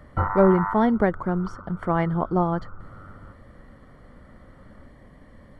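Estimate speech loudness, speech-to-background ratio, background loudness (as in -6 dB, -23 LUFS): -23.0 LUFS, 9.5 dB, -32.5 LUFS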